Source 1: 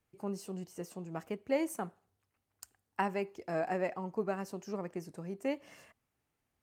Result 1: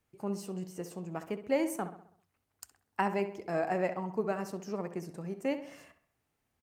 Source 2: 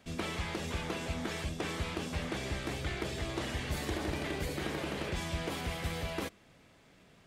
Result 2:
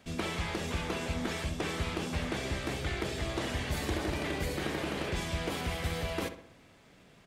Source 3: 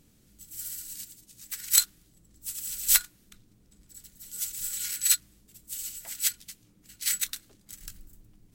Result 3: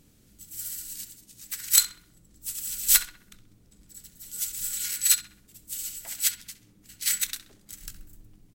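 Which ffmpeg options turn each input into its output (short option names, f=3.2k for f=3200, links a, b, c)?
-filter_complex "[0:a]asoftclip=type=hard:threshold=-5dB,asplit=2[a][b];[b]adelay=65,lowpass=f=2.9k:p=1,volume=-10.5dB,asplit=2[c][d];[d]adelay=65,lowpass=f=2.9k:p=1,volume=0.51,asplit=2[e][f];[f]adelay=65,lowpass=f=2.9k:p=1,volume=0.51,asplit=2[g][h];[h]adelay=65,lowpass=f=2.9k:p=1,volume=0.51,asplit=2[i][j];[j]adelay=65,lowpass=f=2.9k:p=1,volume=0.51,asplit=2[k][l];[l]adelay=65,lowpass=f=2.9k:p=1,volume=0.51[m];[c][e][g][i][k][m]amix=inputs=6:normalize=0[n];[a][n]amix=inputs=2:normalize=0,volume=2dB"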